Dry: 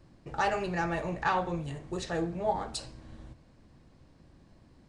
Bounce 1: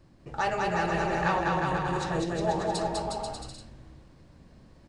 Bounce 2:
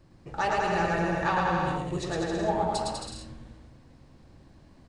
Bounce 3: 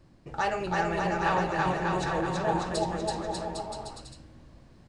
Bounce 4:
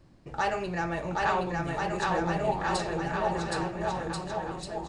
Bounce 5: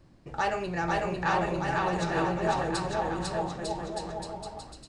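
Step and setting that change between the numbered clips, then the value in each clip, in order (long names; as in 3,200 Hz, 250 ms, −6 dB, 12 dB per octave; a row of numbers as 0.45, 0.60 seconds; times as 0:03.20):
bouncing-ball delay, first gap: 200, 110, 330, 770, 500 milliseconds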